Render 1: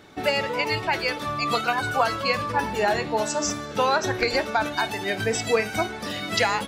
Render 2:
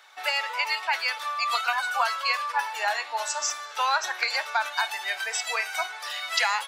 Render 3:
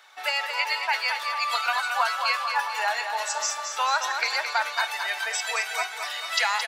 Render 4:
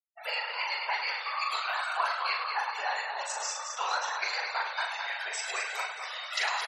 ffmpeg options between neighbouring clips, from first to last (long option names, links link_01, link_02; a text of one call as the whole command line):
ffmpeg -i in.wav -af "highpass=frequency=830:width=0.5412,highpass=frequency=830:width=1.3066" out.wav
ffmpeg -i in.wav -af "aecho=1:1:220|440|660|880|1100|1320:0.447|0.223|0.112|0.0558|0.0279|0.014" out.wav
ffmpeg -i in.wav -af "afftfilt=real='hypot(re,im)*cos(2*PI*random(0))':imag='hypot(re,im)*sin(2*PI*random(1))':win_size=512:overlap=0.75,aecho=1:1:40|104|206.4|370.2|632.4:0.631|0.398|0.251|0.158|0.1,afftfilt=real='re*gte(hypot(re,im),0.01)':imag='im*gte(hypot(re,im),0.01)':win_size=1024:overlap=0.75,volume=-2dB" out.wav